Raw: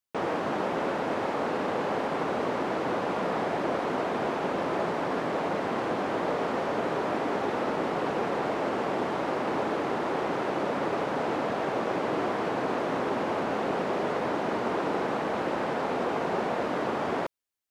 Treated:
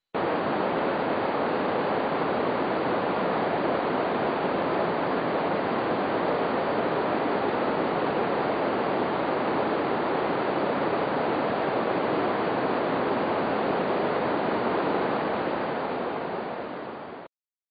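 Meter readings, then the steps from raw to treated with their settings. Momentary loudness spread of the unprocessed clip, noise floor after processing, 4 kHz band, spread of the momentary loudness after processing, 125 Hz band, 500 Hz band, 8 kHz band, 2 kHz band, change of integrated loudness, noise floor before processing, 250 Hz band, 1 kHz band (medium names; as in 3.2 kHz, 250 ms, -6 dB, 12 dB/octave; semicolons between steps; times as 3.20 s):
1 LU, -37 dBFS, +2.5 dB, 3 LU, +2.5 dB, +2.5 dB, under -30 dB, +2.5 dB, +3.0 dB, -31 dBFS, +2.5 dB, +2.5 dB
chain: fade out at the end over 2.62 s; trim +3 dB; MP2 48 kbps 16 kHz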